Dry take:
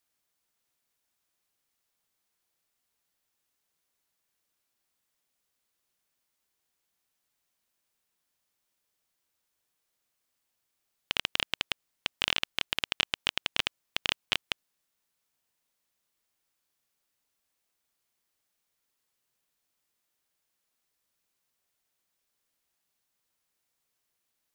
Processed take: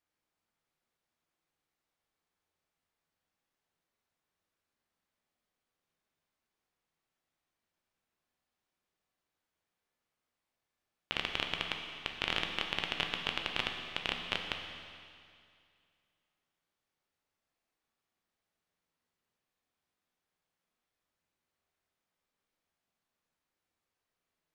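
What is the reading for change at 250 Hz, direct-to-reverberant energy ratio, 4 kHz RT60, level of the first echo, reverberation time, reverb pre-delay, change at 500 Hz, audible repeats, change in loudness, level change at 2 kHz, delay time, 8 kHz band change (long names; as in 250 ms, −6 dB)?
+1.5 dB, 2.5 dB, 2.3 s, no echo audible, 2.3 s, 12 ms, +0.5 dB, no echo audible, −4.5 dB, −3.0 dB, no echo audible, −10.5 dB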